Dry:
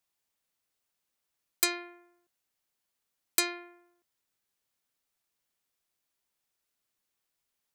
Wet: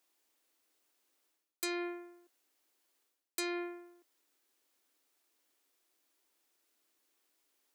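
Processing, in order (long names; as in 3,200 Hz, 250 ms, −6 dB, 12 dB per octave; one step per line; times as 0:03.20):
low shelf with overshoot 220 Hz −11 dB, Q 3
reversed playback
downward compressor 10 to 1, threshold −40 dBFS, peak gain reduction 20.5 dB
reversed playback
level +5.5 dB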